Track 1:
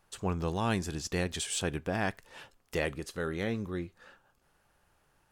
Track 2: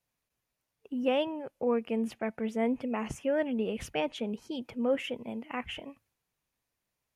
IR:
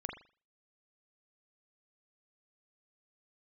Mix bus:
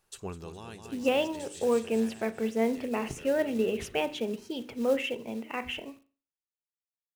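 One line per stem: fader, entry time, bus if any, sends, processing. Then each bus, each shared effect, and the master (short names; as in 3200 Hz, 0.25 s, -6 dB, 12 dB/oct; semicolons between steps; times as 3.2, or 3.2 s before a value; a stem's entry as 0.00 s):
-7.5 dB, 0.00 s, no send, echo send -14 dB, high shelf 5200 Hz +9 dB; auto duck -13 dB, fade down 0.60 s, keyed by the second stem
-1.5 dB, 0.00 s, send -8 dB, no echo send, notches 50/100/150/200/250/300/350/400 Hz; companded quantiser 6-bit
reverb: on, pre-delay 40 ms
echo: feedback echo 0.206 s, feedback 55%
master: bell 5200 Hz +2.5 dB 2 oct; small resonant body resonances 400/2700/3900 Hz, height 7 dB, ringing for 35 ms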